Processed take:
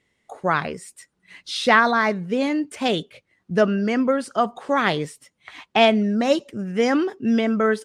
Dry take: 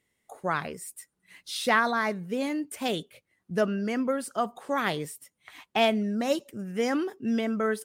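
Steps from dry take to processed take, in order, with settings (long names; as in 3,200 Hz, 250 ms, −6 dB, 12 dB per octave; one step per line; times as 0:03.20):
low-pass filter 6,000 Hz 12 dB per octave
level +7.5 dB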